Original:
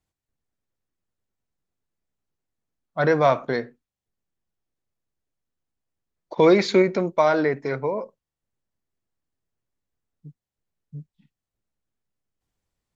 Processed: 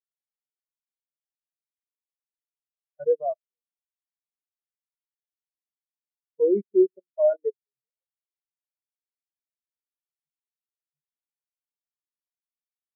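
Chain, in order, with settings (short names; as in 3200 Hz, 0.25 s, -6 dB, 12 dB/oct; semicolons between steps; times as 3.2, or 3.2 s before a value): level quantiser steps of 21 dB; spectral expander 4:1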